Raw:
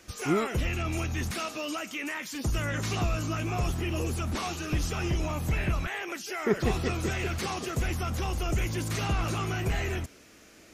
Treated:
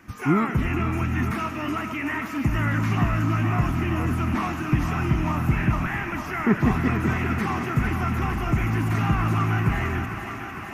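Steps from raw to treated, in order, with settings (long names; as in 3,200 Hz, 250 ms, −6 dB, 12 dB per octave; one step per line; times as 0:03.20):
octave-band graphic EQ 125/250/500/1,000/2,000/4,000/8,000 Hz +8/+11/−9/+9/+6/−10/−9 dB
feedback echo with a high-pass in the loop 454 ms, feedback 85%, high-pass 230 Hz, level −8.5 dB
comb and all-pass reverb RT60 4.4 s, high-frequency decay 0.8×, pre-delay 35 ms, DRR 11.5 dB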